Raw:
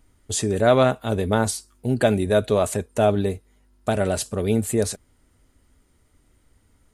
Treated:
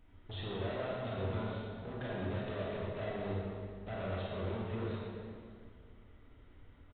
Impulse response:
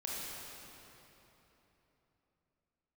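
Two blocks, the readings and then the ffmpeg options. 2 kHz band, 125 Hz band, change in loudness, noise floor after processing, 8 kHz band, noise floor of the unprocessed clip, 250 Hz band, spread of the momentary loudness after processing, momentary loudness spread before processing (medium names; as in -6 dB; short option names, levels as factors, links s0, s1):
-15.0 dB, -13.5 dB, -17.5 dB, -58 dBFS, under -40 dB, -62 dBFS, -17.0 dB, 12 LU, 10 LU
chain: -filter_complex "[0:a]acompressor=threshold=0.0282:ratio=6,aresample=8000,asoftclip=type=hard:threshold=0.0133,aresample=44100[s0];[1:a]atrim=start_sample=2205,asetrate=74970,aresample=44100[s1];[s0][s1]afir=irnorm=-1:irlink=0,volume=1.58"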